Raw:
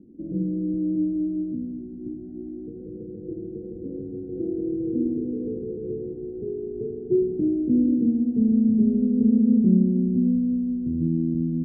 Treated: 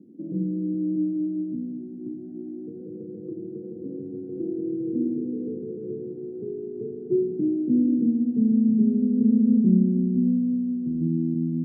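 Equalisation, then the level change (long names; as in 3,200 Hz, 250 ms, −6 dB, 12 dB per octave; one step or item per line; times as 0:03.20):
high-pass filter 130 Hz 24 dB per octave
dynamic equaliser 590 Hz, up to −5 dB, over −39 dBFS, Q 1.4
0.0 dB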